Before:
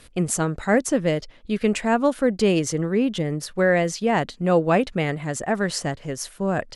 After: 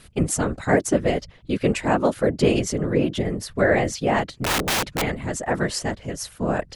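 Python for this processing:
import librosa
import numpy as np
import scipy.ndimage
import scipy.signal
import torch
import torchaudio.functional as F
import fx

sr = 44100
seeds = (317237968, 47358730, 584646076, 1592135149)

y = fx.whisperise(x, sr, seeds[0])
y = fx.overflow_wrap(y, sr, gain_db=17.0, at=(4.34, 5.02))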